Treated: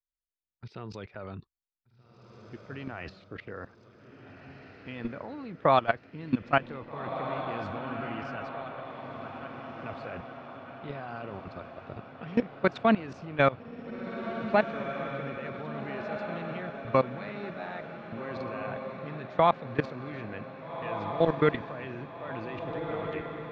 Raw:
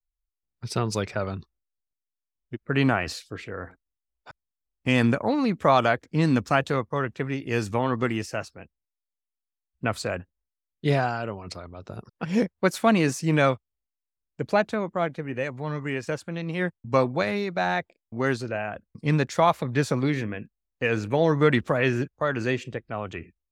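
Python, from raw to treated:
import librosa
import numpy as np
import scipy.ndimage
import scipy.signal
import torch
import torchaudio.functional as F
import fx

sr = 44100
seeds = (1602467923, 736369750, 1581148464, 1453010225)

y = scipy.signal.sosfilt(scipy.signal.butter(4, 3800.0, 'lowpass', fs=sr, output='sos'), x)
y = fx.low_shelf(y, sr, hz=91.0, db=-5.5)
y = fx.level_steps(y, sr, step_db=20)
y = fx.echo_diffused(y, sr, ms=1664, feedback_pct=57, wet_db=-8)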